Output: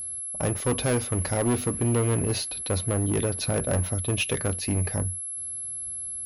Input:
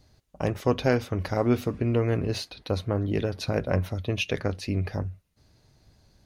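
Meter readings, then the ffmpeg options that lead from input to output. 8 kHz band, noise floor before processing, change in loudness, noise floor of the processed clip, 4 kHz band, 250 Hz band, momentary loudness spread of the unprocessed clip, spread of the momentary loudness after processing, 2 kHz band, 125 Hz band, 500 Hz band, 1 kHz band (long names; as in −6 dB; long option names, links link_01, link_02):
+20.0 dB, −64 dBFS, +1.5 dB, −34 dBFS, +2.5 dB, −0.5 dB, 7 LU, 7 LU, +0.5 dB, +1.5 dB, −1.0 dB, −0.5 dB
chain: -af "asoftclip=type=hard:threshold=-23dB,aeval=exprs='val(0)+0.02*sin(2*PI*11000*n/s)':channel_layout=same,volume=2.5dB"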